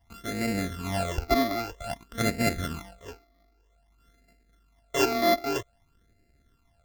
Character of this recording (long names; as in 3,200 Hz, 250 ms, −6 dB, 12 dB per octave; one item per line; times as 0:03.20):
a buzz of ramps at a fixed pitch in blocks of 64 samples
phaser sweep stages 12, 0.52 Hz, lowest notch 150–1,100 Hz